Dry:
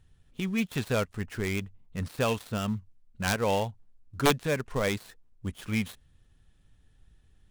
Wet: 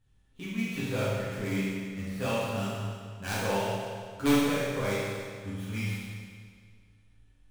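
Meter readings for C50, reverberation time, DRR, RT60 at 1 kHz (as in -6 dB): -4.0 dB, 1.9 s, -11.5 dB, 1.9 s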